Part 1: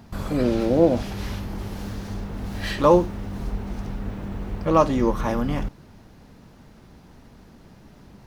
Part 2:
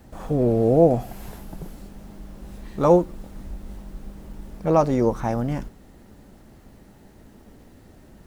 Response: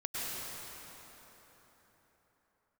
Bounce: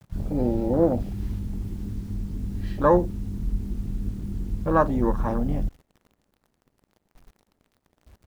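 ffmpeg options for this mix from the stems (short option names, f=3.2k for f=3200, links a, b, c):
-filter_complex "[0:a]lowshelf=f=100:g=5.5,afwtdn=0.0562,acrusher=bits=8:mix=0:aa=0.000001,volume=-2dB[a];[1:a]aeval=exprs='sgn(val(0))*max(abs(val(0))-0.00335,0)':c=same,volume=-1,adelay=3.6,volume=-17dB[b];[a][b]amix=inputs=2:normalize=0"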